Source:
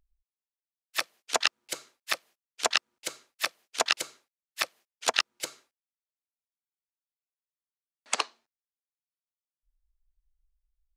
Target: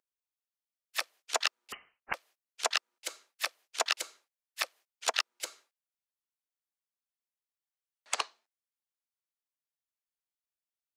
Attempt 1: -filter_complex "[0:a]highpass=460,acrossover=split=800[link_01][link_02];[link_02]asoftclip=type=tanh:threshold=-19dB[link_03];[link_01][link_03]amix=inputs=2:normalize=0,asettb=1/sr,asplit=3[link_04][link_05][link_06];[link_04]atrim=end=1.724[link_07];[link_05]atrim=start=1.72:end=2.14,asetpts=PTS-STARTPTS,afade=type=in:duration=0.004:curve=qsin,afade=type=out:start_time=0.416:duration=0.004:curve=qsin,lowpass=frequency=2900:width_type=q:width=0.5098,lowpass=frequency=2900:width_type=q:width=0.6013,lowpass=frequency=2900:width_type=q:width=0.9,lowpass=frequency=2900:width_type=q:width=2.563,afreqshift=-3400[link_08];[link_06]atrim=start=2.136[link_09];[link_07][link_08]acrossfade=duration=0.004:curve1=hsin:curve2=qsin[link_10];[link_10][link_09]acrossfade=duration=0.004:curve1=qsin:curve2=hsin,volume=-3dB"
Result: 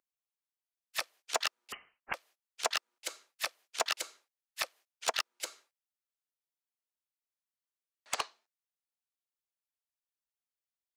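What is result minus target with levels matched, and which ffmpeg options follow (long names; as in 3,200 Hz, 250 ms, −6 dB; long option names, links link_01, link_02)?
soft clipping: distortion +9 dB
-filter_complex "[0:a]highpass=460,acrossover=split=800[link_01][link_02];[link_02]asoftclip=type=tanh:threshold=-10dB[link_03];[link_01][link_03]amix=inputs=2:normalize=0,asettb=1/sr,asplit=3[link_04][link_05][link_06];[link_04]atrim=end=1.724[link_07];[link_05]atrim=start=1.72:end=2.14,asetpts=PTS-STARTPTS,afade=type=in:duration=0.004:curve=qsin,afade=type=out:start_time=0.416:duration=0.004:curve=qsin,lowpass=frequency=2900:width_type=q:width=0.5098,lowpass=frequency=2900:width_type=q:width=0.6013,lowpass=frequency=2900:width_type=q:width=0.9,lowpass=frequency=2900:width_type=q:width=2.563,afreqshift=-3400[link_08];[link_06]atrim=start=2.136[link_09];[link_07][link_08]acrossfade=duration=0.004:curve1=hsin:curve2=qsin[link_10];[link_10][link_09]acrossfade=duration=0.004:curve1=qsin:curve2=hsin,volume=-3dB"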